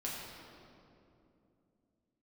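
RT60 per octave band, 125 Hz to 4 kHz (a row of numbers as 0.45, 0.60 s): 3.4, 3.9, 3.1, 2.4, 1.9, 1.6 s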